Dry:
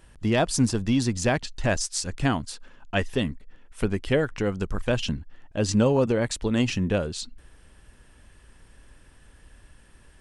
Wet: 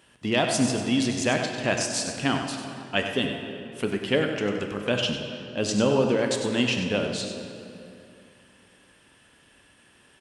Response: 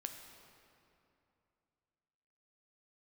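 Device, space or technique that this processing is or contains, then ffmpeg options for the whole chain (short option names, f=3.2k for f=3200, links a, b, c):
PA in a hall: -filter_complex "[0:a]highpass=170,equalizer=f=3k:t=o:w=0.71:g=6.5,aecho=1:1:97:0.355[a];[1:a]atrim=start_sample=2205[b];[a][b]afir=irnorm=-1:irlink=0,volume=2.5dB"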